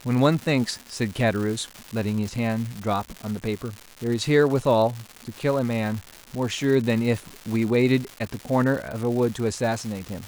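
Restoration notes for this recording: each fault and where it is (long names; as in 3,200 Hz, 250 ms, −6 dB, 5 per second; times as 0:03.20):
surface crackle 320 per second −29 dBFS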